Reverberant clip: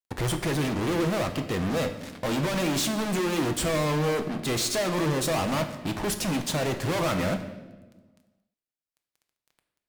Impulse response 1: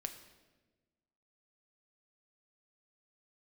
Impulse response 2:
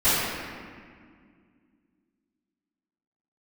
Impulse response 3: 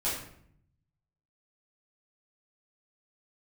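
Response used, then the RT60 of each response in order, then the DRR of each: 1; 1.2, 2.0, 0.65 seconds; 6.0, −20.5, −10.0 decibels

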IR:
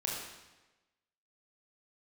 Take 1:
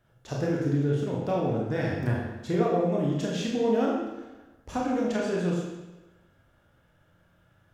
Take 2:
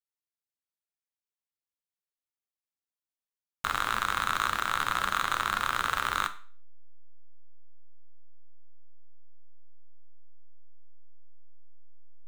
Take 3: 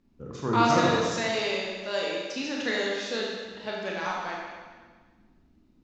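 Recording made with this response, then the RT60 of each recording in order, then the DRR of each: 1; 1.1, 0.40, 1.5 seconds; −3.5, 8.5, −3.5 decibels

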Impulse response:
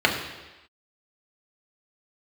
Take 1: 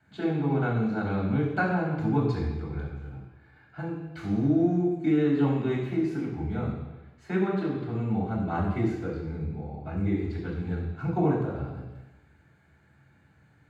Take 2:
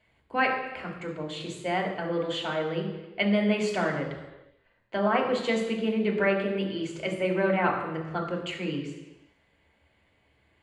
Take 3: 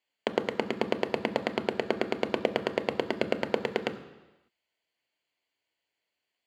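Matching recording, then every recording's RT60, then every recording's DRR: 2; non-exponential decay, non-exponential decay, non-exponential decay; −9.5, −1.0, 9.0 decibels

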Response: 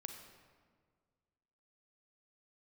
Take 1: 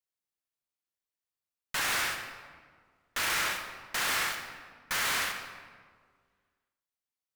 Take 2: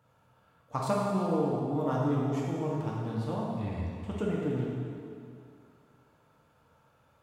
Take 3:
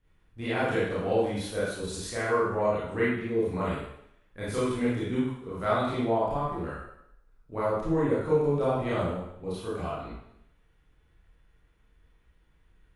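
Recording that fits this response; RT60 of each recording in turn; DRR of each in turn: 1; 1.8, 2.4, 0.75 seconds; 4.5, −5.0, −10.0 decibels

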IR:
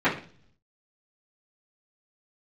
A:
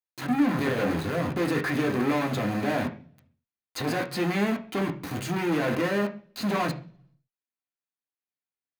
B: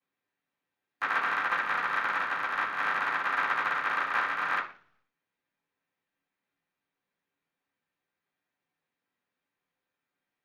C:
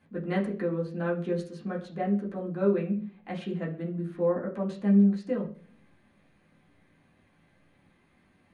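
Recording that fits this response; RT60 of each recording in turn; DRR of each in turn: B; 0.45, 0.45, 0.45 seconds; 2.0, −14.5, −5.5 decibels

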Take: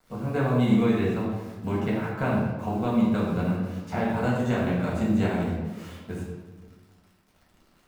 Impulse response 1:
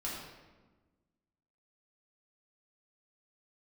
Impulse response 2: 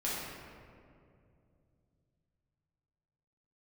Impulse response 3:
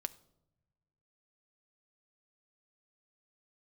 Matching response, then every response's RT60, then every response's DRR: 1; 1.3 s, 2.5 s, non-exponential decay; −6.5, −8.5, 12.0 decibels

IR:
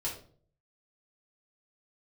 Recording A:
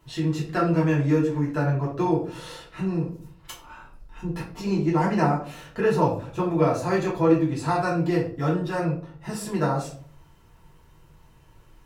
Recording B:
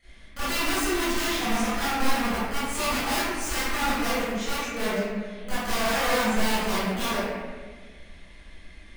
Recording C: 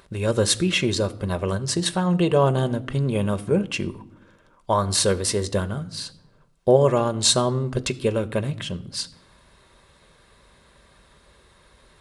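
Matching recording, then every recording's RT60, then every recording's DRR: A; 0.50 s, 1.5 s, non-exponential decay; −6.0, −16.5, 10.5 decibels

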